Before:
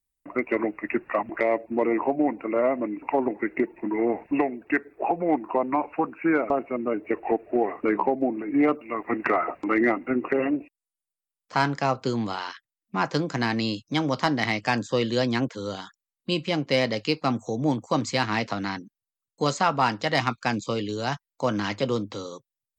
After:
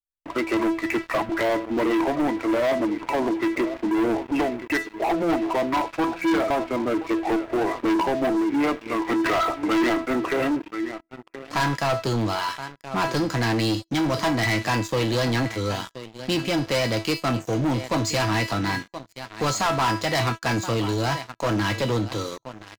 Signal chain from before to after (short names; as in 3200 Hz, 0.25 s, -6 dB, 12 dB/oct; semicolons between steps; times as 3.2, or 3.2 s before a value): resonant low shelf 130 Hz +6.5 dB, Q 1.5; resonator 330 Hz, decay 0.32 s, harmonics all, mix 80%; echo 1.024 s -18.5 dB; sample leveller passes 5